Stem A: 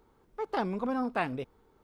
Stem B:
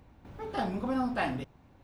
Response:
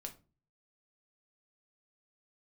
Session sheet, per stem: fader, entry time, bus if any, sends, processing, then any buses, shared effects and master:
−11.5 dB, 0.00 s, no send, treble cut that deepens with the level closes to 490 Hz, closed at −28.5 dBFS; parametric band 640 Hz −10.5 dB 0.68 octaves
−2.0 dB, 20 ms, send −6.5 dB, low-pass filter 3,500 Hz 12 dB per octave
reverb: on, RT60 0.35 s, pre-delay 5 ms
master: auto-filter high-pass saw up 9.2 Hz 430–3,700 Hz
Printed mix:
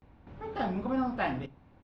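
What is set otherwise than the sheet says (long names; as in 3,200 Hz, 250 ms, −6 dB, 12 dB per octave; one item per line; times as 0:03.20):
stem A −11.5 dB → −22.0 dB
master: missing auto-filter high-pass saw up 9.2 Hz 430–3,700 Hz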